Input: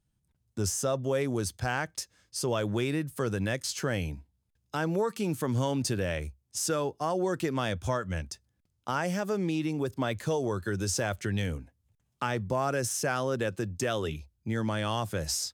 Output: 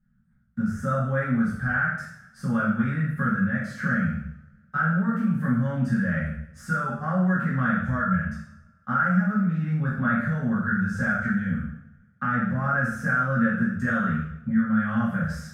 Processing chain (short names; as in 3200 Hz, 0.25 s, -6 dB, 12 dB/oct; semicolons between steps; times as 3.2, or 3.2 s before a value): spectral trails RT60 0.30 s; EQ curve 110 Hz 0 dB, 220 Hz +11 dB, 310 Hz -23 dB, 630 Hz -11 dB, 980 Hz -17 dB, 1400 Hz +8 dB, 2300 Hz -10 dB, 4600 Hz -17 dB, 7300 Hz -20 dB, 15000 Hz -17 dB; compressor, threshold -29 dBFS, peak gain reduction 10 dB; resonant high shelf 2300 Hz -7.5 dB, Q 1.5; two-slope reverb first 0.65 s, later 1.9 s, from -25 dB, DRR -9 dB